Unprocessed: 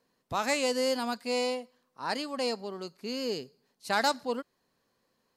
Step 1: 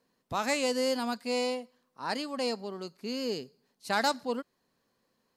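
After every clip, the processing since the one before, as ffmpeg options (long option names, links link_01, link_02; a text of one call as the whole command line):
ffmpeg -i in.wav -af "equalizer=frequency=220:width_type=o:width=0.93:gain=2.5,volume=-1dB" out.wav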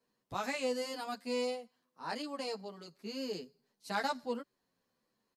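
ffmpeg -i in.wav -filter_complex "[0:a]acrossover=split=160|3500[link_01][link_02][link_03];[link_03]alimiter=level_in=6.5dB:limit=-24dB:level=0:latency=1,volume=-6.5dB[link_04];[link_01][link_02][link_04]amix=inputs=3:normalize=0,asplit=2[link_05][link_06];[link_06]adelay=9.8,afreqshift=-1.4[link_07];[link_05][link_07]amix=inputs=2:normalize=1,volume=-3dB" out.wav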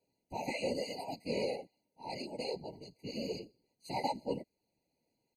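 ffmpeg -i in.wav -af "afftfilt=real='hypot(re,im)*cos(2*PI*random(0))':imag='hypot(re,im)*sin(2*PI*random(1))':win_size=512:overlap=0.75,afftfilt=real='re*eq(mod(floor(b*sr/1024/990),2),0)':imag='im*eq(mod(floor(b*sr/1024/990),2),0)':win_size=1024:overlap=0.75,volume=6dB" out.wav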